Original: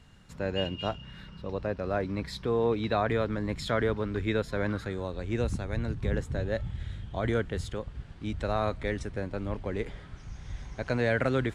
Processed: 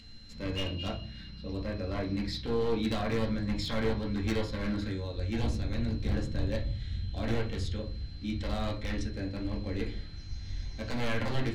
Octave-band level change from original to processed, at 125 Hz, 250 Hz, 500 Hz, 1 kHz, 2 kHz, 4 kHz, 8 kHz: -0.5 dB, 0.0 dB, -5.5 dB, -6.0 dB, -5.0 dB, +1.5 dB, 0.0 dB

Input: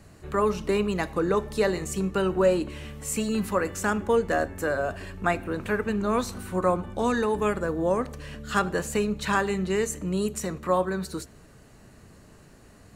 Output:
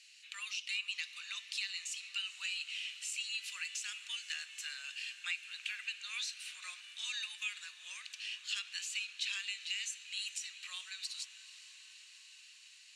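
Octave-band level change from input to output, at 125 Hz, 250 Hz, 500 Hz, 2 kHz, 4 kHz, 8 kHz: under -40 dB, under -40 dB, under -40 dB, -8.0 dB, +3.0 dB, -6.0 dB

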